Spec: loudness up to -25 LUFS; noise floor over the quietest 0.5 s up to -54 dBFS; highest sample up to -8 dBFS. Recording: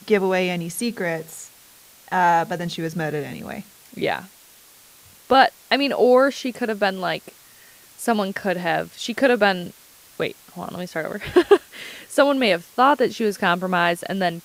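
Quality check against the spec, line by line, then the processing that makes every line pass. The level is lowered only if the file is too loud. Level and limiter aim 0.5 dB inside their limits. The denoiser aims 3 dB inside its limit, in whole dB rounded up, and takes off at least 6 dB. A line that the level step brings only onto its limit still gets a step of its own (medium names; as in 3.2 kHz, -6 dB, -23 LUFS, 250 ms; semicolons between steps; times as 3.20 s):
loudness -21.0 LUFS: fail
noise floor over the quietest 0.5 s -50 dBFS: fail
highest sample -2.0 dBFS: fail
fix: trim -4.5 dB; peak limiter -8.5 dBFS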